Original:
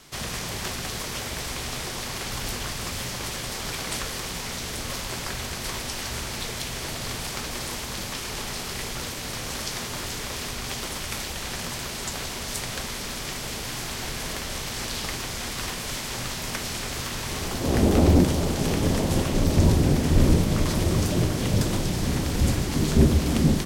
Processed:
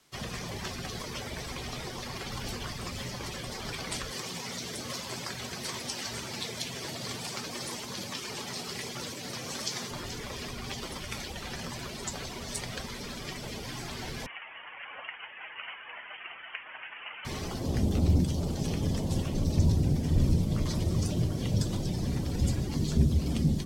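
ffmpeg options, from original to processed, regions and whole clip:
ffmpeg -i in.wav -filter_complex "[0:a]asettb=1/sr,asplit=3[link_01][link_02][link_03];[link_01]atrim=end=4.114[link_04];[link_02]atrim=start=4.11:end=9.91,asetpts=PTS-STARTPTS,afade=type=in:duration=0.004:curve=qsin,afade=type=out:start_time=5.796:duration=0.004:curve=qsin,highpass=110,highshelf=frequency=4600:gain=3[link_05];[link_03]atrim=start=9.906[link_06];[link_04][link_05]acrossfade=duration=0.004:curve1=hsin:curve2=qsin[link_07];[link_07][link_06]acrossfade=duration=0.004:curve1=qsin:curve2=hsin,asettb=1/sr,asplit=3[link_08][link_09][link_10];[link_08]atrim=end=14.264[link_11];[link_09]atrim=start=14.26:end=17.25,asetpts=PTS-STARTPTS,afade=type=in:duration=0.004:curve=qsin,afade=type=out:start_time=2.986:duration=0.004:curve=qsin,highpass=frequency=940:width=0.5412,highpass=frequency=940:width=1.3066,lowpass=frequency=3400:width_type=q:width=0.5098,lowpass=frequency=3400:width_type=q:width=0.6013,lowpass=frequency=3400:width_type=q:width=0.9,lowpass=frequency=3400:width_type=q:width=2.563,afreqshift=-4000[link_12];[link_10]atrim=start=17.246[link_13];[link_11][link_12]acrossfade=duration=0.004:curve1=hsin:curve2=qsin[link_14];[link_14][link_13]acrossfade=duration=0.004:curve1=qsin:curve2=hsin,afftdn=noise_reduction=14:noise_floor=-33,lowshelf=frequency=80:gain=-9,acrossover=split=180|3000[link_15][link_16][link_17];[link_16]acompressor=threshold=-37dB:ratio=5[link_18];[link_15][link_18][link_17]amix=inputs=3:normalize=0" out.wav

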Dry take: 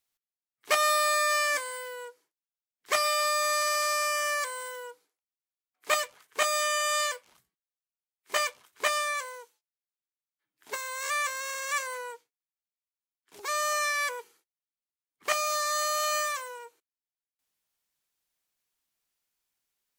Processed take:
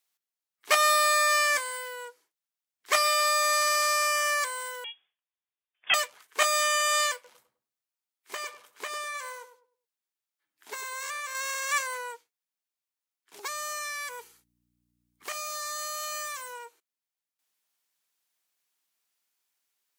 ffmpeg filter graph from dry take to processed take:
ffmpeg -i in.wav -filter_complex "[0:a]asettb=1/sr,asplit=3[link_01][link_02][link_03];[link_01]atrim=end=4.844[link_04];[link_02]atrim=start=4.84:end=5.94,asetpts=PTS-STARTPTS,afade=type=in:duration=0.004:curve=qsin,afade=type=out:start_time=1.096:duration=0.004:curve=qsin,lowpass=frequency=3200:width_type=q:width=0.5098,lowpass=frequency=3200:width_type=q:width=0.6013,lowpass=frequency=3200:width_type=q:width=0.9,lowpass=frequency=3200:width_type=q:width=2.563,afreqshift=-3800,bandreject=frequency=1400:width=9.1[link_05];[link_03]atrim=start=5.936[link_06];[link_04][link_05]acrossfade=duration=0.004:curve1=hsin:curve2=qsin[link_07];[link_07][link_06]acrossfade=duration=0.004:curve1=qsin:curve2=hsin,asettb=1/sr,asplit=3[link_08][link_09][link_10];[link_08]atrim=end=7.144[link_11];[link_09]atrim=start=7.14:end=11.35,asetpts=PTS-STARTPTS,afade=type=in:duration=0.004:curve=qsin,afade=type=out:start_time=4.206:duration=0.004:curve=qsin,acompressor=threshold=-34dB:ratio=8:attack=3.2:release=140:knee=1:detection=peak,asplit=2[link_12][link_13];[link_13]adelay=102,lowpass=frequency=860:poles=1,volume=-7.5dB,asplit=2[link_14][link_15];[link_15]adelay=102,lowpass=frequency=860:poles=1,volume=0.36,asplit=2[link_16][link_17];[link_17]adelay=102,lowpass=frequency=860:poles=1,volume=0.36,asplit=2[link_18][link_19];[link_19]adelay=102,lowpass=frequency=860:poles=1,volume=0.36[link_20];[link_12][link_14][link_16][link_18][link_20]amix=inputs=5:normalize=0,atrim=end_sample=185661[link_21];[link_10]atrim=start=11.346[link_22];[link_11][link_21]acrossfade=duration=0.004:curve1=hsin:curve2=qsin[link_23];[link_23][link_22]acrossfade=duration=0.004:curve1=qsin:curve2=hsin,asettb=1/sr,asplit=3[link_24][link_25][link_26];[link_24]atrim=end=13.474[link_27];[link_25]atrim=start=13.47:end=16.53,asetpts=PTS-STARTPTS,afade=type=in:duration=0.004:curve=qsin,afade=type=out:start_time=3.056:duration=0.004:curve=qsin,highshelf=frequency=5500:gain=6,acompressor=threshold=-38dB:ratio=3:attack=3.2:release=140:knee=1:detection=peak,aeval=exprs='val(0)+0.000501*(sin(2*PI*60*n/s)+sin(2*PI*2*60*n/s)/2+sin(2*PI*3*60*n/s)/3+sin(2*PI*4*60*n/s)/4+sin(2*PI*5*60*n/s)/5)':channel_layout=same[link_28];[link_26]atrim=start=16.526[link_29];[link_27][link_28]acrossfade=duration=0.004:curve1=hsin:curve2=qsin[link_30];[link_30][link_29]acrossfade=duration=0.004:curve1=qsin:curve2=hsin,highpass=frequency=400:poles=1,equalizer=frequency=520:width=3.6:gain=-2.5,volume=3dB" out.wav

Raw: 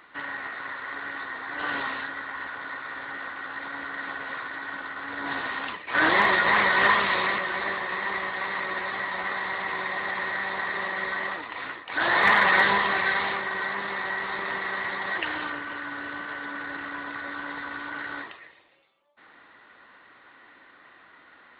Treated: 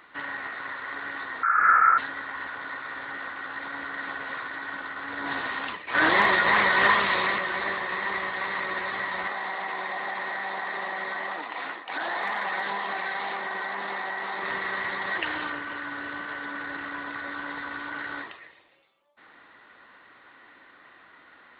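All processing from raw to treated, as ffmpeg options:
ffmpeg -i in.wav -filter_complex "[0:a]asettb=1/sr,asplit=3[link_01][link_02][link_03];[link_01]atrim=end=1.434[link_04];[link_02]atrim=start=1.43:end=1.98,asetpts=PTS-STARTPTS,afade=type=in:duration=0.004:curve=qsin,afade=type=out:start_time=0.546:duration=0.004:curve=qsin,highpass=frequency=1800:width_type=q:width=8.3,lowpass=frequency=2700:width_type=q:width=0.5098,lowpass=frequency=2700:width_type=q:width=0.6013,lowpass=frequency=2700:width_type=q:width=0.9,lowpass=frequency=2700:width_type=q:width=2.563,afreqshift=-3200[link_05];[link_03]atrim=start=1.976[link_06];[link_04][link_05]acrossfade=duration=0.004:curve1=hsin:curve2=qsin[link_07];[link_07][link_06]acrossfade=duration=0.004:curve1=qsin:curve2=hsin,asettb=1/sr,asplit=3[link_08][link_09][link_10];[link_08]atrim=end=9.274[link_11];[link_09]atrim=start=9.27:end=14.43,asetpts=PTS-STARTPTS,afade=type=in:duration=0.004:curve=qsin,afade=type=out:start_time=5.156:duration=0.004:curve=qsin,equalizer=frequency=760:width_type=o:width=0.46:gain=7.5,acompressor=threshold=-28dB:ratio=4:attack=3.2:release=140:knee=1:detection=peak,highpass=frequency=170:width=0.5412,highpass=frequency=170:width=1.3066[link_12];[link_10]atrim=start=14.426[link_13];[link_11][link_12]acrossfade=duration=0.004:curve1=hsin:curve2=qsin[link_14];[link_14][link_13]acrossfade=duration=0.004:curve1=qsin:curve2=hsin" out.wav

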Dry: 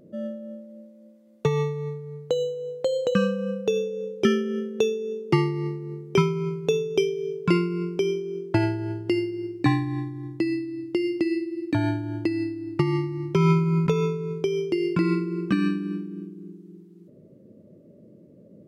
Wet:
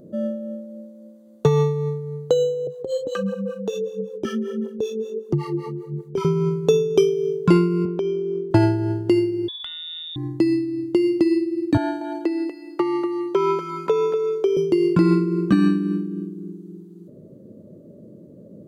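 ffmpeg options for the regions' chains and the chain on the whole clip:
ffmpeg -i in.wav -filter_complex "[0:a]asettb=1/sr,asplit=3[link_01][link_02][link_03];[link_01]atrim=end=2.674[link_04];[link_02]atrim=start=2.67:end=6.25,asetpts=PTS-STARTPTS,afade=type=in:duration=0.004:curve=qsin,afade=type=out:start_time=3.576:duration=0.004:curve=qsin,aphaser=in_gain=1:out_gain=1:delay=4.6:decay=0.57:speed=1.5:type=triangular,acompressor=threshold=-23dB:ratio=3:attack=3.2:release=140:knee=1:detection=peak,acrossover=split=450[link_05][link_06];[link_05]aeval=exprs='val(0)*(1-1/2+1/2*cos(2*PI*5.2*n/s))':channel_layout=same[link_07];[link_06]aeval=exprs='val(0)*(1-1/2-1/2*cos(2*PI*5.2*n/s))':channel_layout=same[link_08];[link_07][link_08]amix=inputs=2:normalize=0[link_09];[link_03]atrim=start=6.246[link_10];[link_04][link_09]acrossfade=duration=0.004:curve1=hsin:curve2=qsin[link_11];[link_11][link_10]acrossfade=duration=0.004:curve1=qsin:curve2=hsin,asettb=1/sr,asplit=3[link_12][link_13][link_14];[link_12]atrim=end=7.854[link_15];[link_13]atrim=start=7.85:end=8.51,asetpts=PTS-STARTPTS,afade=type=in:duration=0.004:curve=qsin,afade=type=out:start_time=0.656:duration=0.004:curve=qsin,highpass=150,lowpass=3100,acompressor=threshold=-27dB:ratio=4:attack=3.2:release=140:knee=1:detection=peak[link_16];[link_14]atrim=start=8.506[link_17];[link_15][link_16]acrossfade=duration=0.004:curve1=hsin:curve2=qsin[link_18];[link_18][link_17]acrossfade=duration=0.004:curve1=qsin:curve2=hsin,asettb=1/sr,asplit=3[link_19][link_20][link_21];[link_19]atrim=end=9.484[link_22];[link_20]atrim=start=9.48:end=10.16,asetpts=PTS-STARTPTS,afade=type=in:duration=0.004:curve=qsin,afade=type=out:start_time=0.676:duration=0.004:curve=qsin,lowpass=frequency=3200:width_type=q:width=0.5098,lowpass=frequency=3200:width_type=q:width=0.6013,lowpass=frequency=3200:width_type=q:width=0.9,lowpass=frequency=3200:width_type=q:width=2.563,afreqshift=-3800,acompressor=threshold=-33dB:ratio=20:attack=3.2:release=140:knee=1:detection=peak[link_23];[link_21]atrim=start=10.156[link_24];[link_22][link_23]acrossfade=duration=0.004:curve1=hsin:curve2=qsin[link_25];[link_25][link_24]acrossfade=duration=0.004:curve1=qsin:curve2=hsin,asettb=1/sr,asplit=3[link_26][link_27][link_28];[link_26]atrim=end=11.774[link_29];[link_27]atrim=start=11.77:end=14.57,asetpts=PTS-STARTPTS,afade=type=in:duration=0.004:curve=qsin,afade=type=out:start_time=2.796:duration=0.004:curve=qsin,acrossover=split=3300[link_30][link_31];[link_31]acompressor=threshold=-53dB:ratio=4:attack=1:release=60[link_32];[link_30][link_32]amix=inputs=2:normalize=0,highpass=frequency=350:width=0.5412,highpass=frequency=350:width=1.3066,aecho=1:1:241:0.355,atrim=end_sample=123480[link_33];[link_28]atrim=start=14.566[link_34];[link_29][link_33]acrossfade=duration=0.004:curve1=hsin:curve2=qsin[link_35];[link_35][link_34]acrossfade=duration=0.004:curve1=qsin:curve2=hsin,equalizer=frequency=2300:width=1.7:gain=-11,bandreject=frequency=5300:width=8.8,acontrast=76" out.wav

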